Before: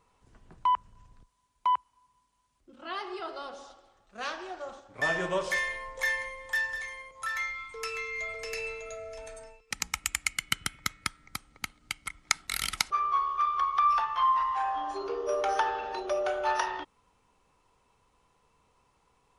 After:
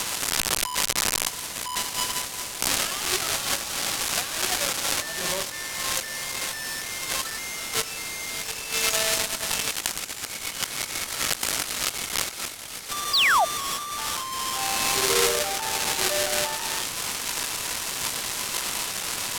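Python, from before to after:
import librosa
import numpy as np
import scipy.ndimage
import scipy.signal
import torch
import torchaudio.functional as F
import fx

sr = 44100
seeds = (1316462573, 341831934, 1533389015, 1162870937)

y = x + 0.5 * 10.0 ** (-9.5 / 20.0) * np.diff(np.sign(x), prepend=np.sign(x[:1]))
y = fx.high_shelf(y, sr, hz=11000.0, db=-6.5, at=(8.73, 9.17))
y = fx.over_compress(y, sr, threshold_db=-25.0, ratio=-0.5)
y = fx.spec_paint(y, sr, seeds[0], shape='fall', start_s=13.13, length_s=0.32, low_hz=620.0, high_hz=5200.0, level_db=-18.0)
y = fx.room_flutter(y, sr, wall_m=8.0, rt60_s=0.51, at=(14.71, 15.39))
y = np.interp(np.arange(len(y)), np.arange(len(y))[::2], y[::2])
y = F.gain(torch.from_numpy(y), -1.0).numpy()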